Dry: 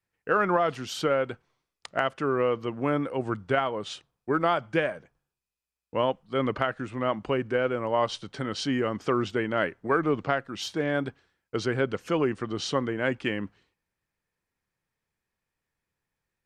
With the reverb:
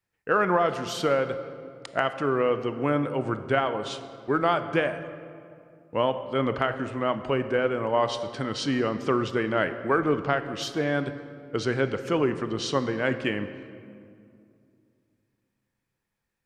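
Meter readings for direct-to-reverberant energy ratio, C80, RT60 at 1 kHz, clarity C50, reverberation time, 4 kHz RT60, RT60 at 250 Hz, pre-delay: 10.0 dB, 12.0 dB, 2.2 s, 11.0 dB, 2.4 s, 1.3 s, 3.0 s, 21 ms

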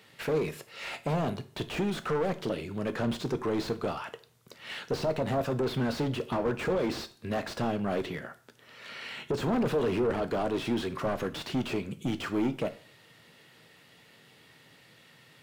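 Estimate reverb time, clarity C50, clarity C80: 0.45 s, 16.5 dB, 21.0 dB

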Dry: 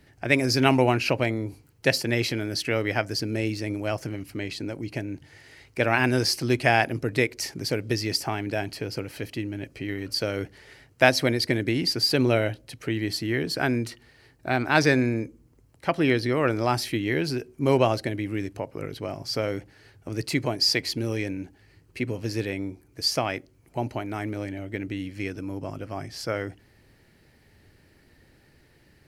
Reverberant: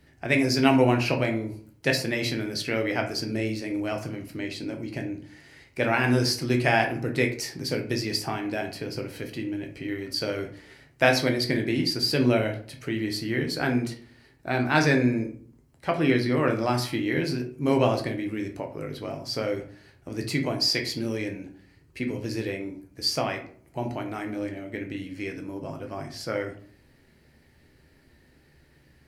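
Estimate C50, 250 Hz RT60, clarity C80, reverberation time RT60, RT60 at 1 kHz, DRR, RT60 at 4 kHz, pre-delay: 10.0 dB, 0.65 s, 14.5 dB, 0.55 s, 0.50 s, 3.0 dB, 0.30 s, 9 ms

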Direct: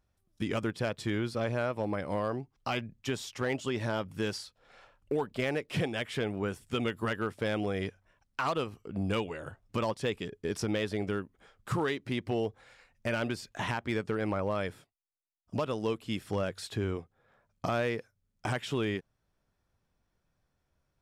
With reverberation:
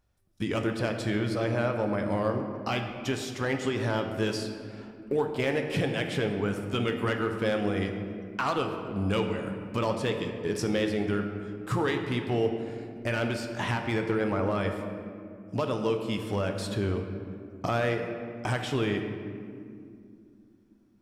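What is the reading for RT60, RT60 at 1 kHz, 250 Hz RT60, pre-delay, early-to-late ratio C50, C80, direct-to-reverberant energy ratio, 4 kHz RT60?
2.4 s, 2.1 s, 3.9 s, 5 ms, 6.0 dB, 7.0 dB, 4.0 dB, 1.2 s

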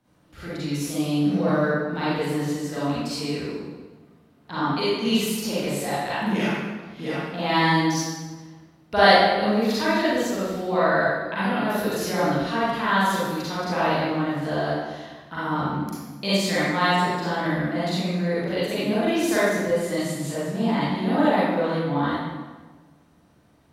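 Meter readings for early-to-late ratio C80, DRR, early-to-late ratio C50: -1.0 dB, -11.5 dB, -6.0 dB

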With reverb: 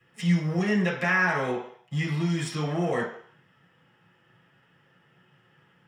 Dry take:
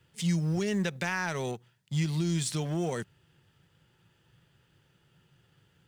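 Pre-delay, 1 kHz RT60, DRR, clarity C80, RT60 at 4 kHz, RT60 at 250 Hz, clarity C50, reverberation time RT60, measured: 3 ms, 0.65 s, -7.5 dB, 9.0 dB, 0.60 s, 0.45 s, 5.5 dB, 0.60 s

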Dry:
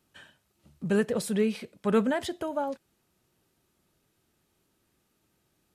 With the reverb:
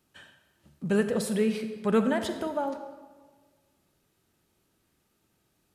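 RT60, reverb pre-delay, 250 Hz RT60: 1.4 s, 37 ms, 1.5 s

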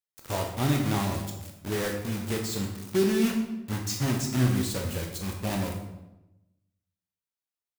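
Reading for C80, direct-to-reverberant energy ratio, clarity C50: 7.5 dB, 1.5 dB, 5.0 dB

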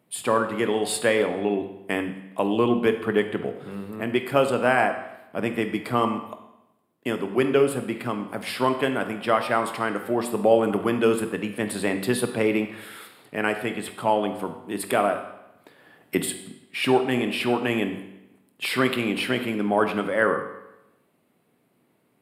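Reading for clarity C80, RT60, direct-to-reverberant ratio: 11.0 dB, 0.90 s, 7.0 dB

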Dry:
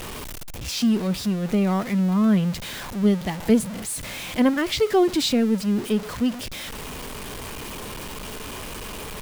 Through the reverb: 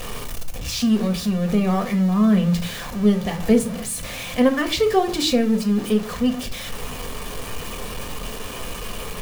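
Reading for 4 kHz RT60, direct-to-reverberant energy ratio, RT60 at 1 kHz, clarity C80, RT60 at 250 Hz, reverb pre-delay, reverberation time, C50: 0.25 s, 4.0 dB, 0.40 s, 18.5 dB, 0.65 s, 4 ms, 0.45 s, 14.0 dB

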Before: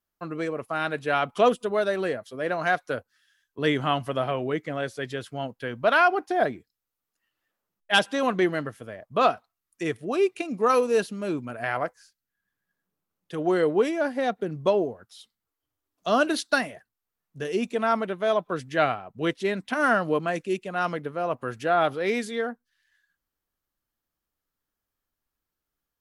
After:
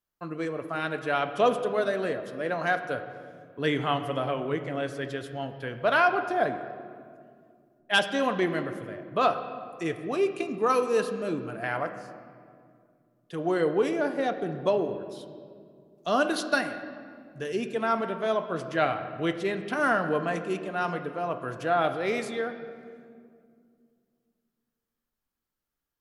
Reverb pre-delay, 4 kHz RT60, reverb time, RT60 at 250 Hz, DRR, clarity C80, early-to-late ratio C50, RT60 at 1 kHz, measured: 6 ms, 1.4 s, 2.2 s, 3.1 s, 7.0 dB, 11.0 dB, 10.0 dB, 2.0 s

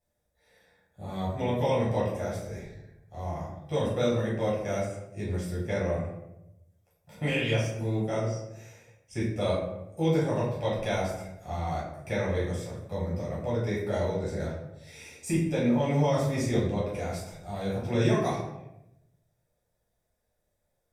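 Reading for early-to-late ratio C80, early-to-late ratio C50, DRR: 6.0 dB, 2.5 dB, -7.5 dB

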